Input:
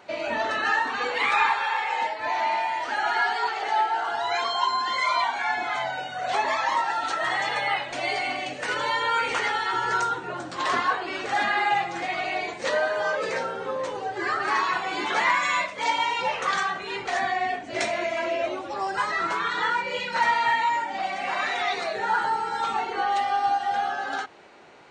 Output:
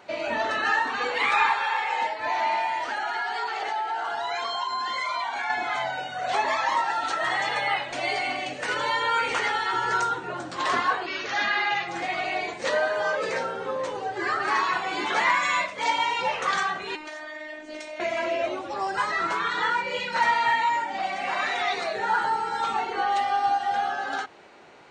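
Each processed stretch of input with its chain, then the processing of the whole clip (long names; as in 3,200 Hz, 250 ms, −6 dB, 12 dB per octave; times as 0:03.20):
0:02.89–0:05.50: downward compressor 5 to 1, threshold −25 dBFS + mains-hum notches 50/100/150/200/250/300/350/400 Hz
0:11.06–0:11.88: Butterworth low-pass 6,600 Hz 96 dB per octave + tilt shelving filter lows −4 dB, about 1,500 Hz + notch filter 770 Hz, Q 7.9
0:16.95–0:18.00: high-pass filter 180 Hz 6 dB per octave + phases set to zero 306 Hz + downward compressor 12 to 1, threshold −31 dBFS
whole clip: no processing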